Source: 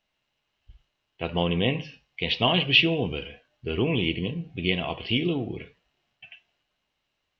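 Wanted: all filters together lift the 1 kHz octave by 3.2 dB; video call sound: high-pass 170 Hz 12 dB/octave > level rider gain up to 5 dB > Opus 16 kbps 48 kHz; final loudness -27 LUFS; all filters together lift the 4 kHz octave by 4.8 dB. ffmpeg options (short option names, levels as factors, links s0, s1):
-af "highpass=170,equalizer=f=1000:t=o:g=4,equalizer=f=4000:t=o:g=7,dynaudnorm=m=1.78,volume=0.708" -ar 48000 -c:a libopus -b:a 16k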